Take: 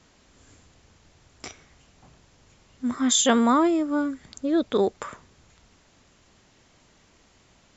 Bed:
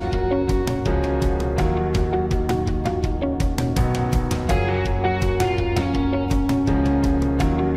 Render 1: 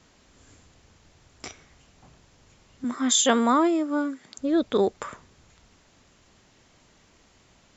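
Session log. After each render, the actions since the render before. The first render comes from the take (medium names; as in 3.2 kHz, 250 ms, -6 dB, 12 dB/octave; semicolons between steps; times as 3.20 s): 2.84–4.39 s: high-pass 230 Hz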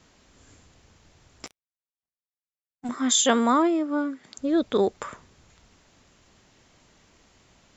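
1.46–2.89 s: power-law waveshaper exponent 3; 3.62–4.24 s: distance through air 88 m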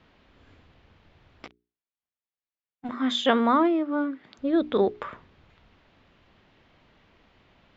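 low-pass 3.6 kHz 24 dB/octave; hum notches 60/120/180/240/300/360/420 Hz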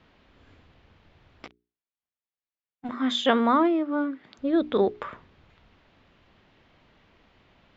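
no audible change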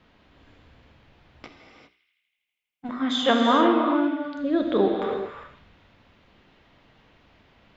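band-passed feedback delay 81 ms, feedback 80%, band-pass 2.7 kHz, level -15 dB; gated-style reverb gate 430 ms flat, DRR 1 dB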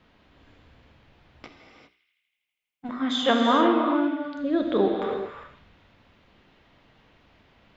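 trim -1 dB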